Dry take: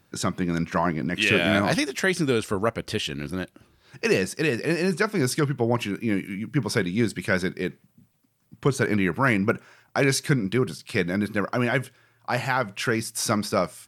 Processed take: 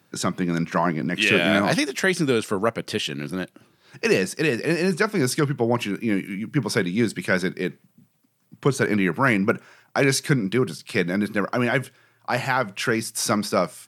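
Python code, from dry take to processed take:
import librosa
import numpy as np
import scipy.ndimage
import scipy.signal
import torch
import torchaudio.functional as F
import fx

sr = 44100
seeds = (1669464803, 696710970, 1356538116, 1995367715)

y = scipy.signal.sosfilt(scipy.signal.butter(4, 120.0, 'highpass', fs=sr, output='sos'), x)
y = y * librosa.db_to_amplitude(2.0)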